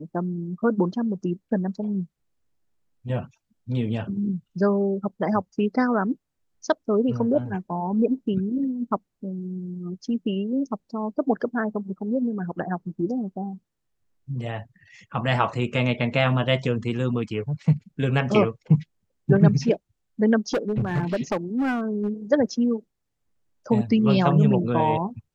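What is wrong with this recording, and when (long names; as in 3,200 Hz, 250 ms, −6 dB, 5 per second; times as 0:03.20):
0:20.53–0:22.09: clipping −19.5 dBFS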